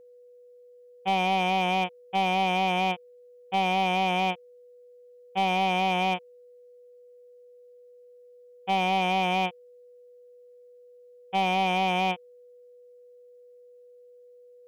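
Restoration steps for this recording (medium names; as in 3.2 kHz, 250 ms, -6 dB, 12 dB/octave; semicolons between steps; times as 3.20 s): clip repair -18 dBFS; band-stop 490 Hz, Q 30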